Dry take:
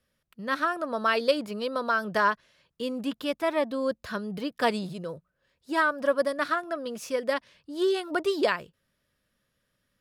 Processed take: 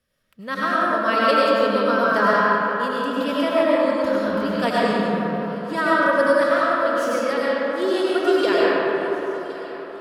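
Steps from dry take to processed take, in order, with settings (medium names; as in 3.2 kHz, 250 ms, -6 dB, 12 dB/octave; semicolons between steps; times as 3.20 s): thinning echo 1068 ms, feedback 69%, level -18 dB; algorithmic reverb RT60 3.8 s, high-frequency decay 0.4×, pre-delay 60 ms, DRR -7.5 dB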